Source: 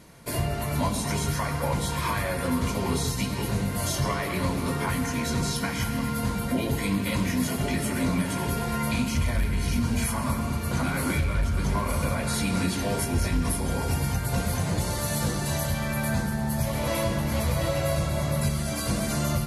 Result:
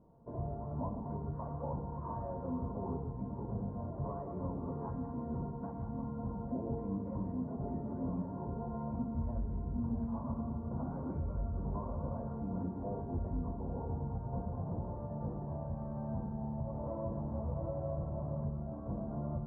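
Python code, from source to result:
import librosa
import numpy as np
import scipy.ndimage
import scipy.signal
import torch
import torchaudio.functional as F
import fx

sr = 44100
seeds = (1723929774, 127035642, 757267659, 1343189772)

y = scipy.signal.sosfilt(scipy.signal.butter(6, 980.0, 'lowpass', fs=sr, output='sos'), x)
y = fx.comb_fb(y, sr, f0_hz=230.0, decay_s=1.3, harmonics='all', damping=0.0, mix_pct=80)
y = y * 10.0 ** (2.0 / 20.0)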